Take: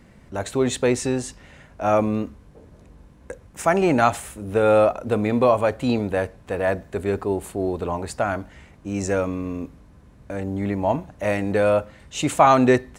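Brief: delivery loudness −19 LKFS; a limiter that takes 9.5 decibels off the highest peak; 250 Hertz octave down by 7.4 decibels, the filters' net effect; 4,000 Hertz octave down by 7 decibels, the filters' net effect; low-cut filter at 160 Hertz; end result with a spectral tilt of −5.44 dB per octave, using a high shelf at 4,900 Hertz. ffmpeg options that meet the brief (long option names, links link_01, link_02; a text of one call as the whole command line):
ffmpeg -i in.wav -af "highpass=160,equalizer=frequency=250:width_type=o:gain=-8.5,equalizer=frequency=4000:width_type=o:gain=-6.5,highshelf=frequency=4900:gain=-6,volume=7.5dB,alimiter=limit=-5.5dB:level=0:latency=1" out.wav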